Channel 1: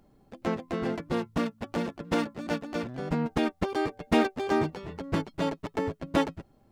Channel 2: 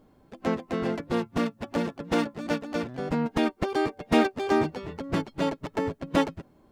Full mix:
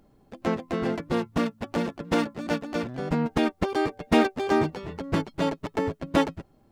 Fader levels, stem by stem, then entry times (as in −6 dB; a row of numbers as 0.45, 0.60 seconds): +1.0, −12.0 decibels; 0.00, 0.00 seconds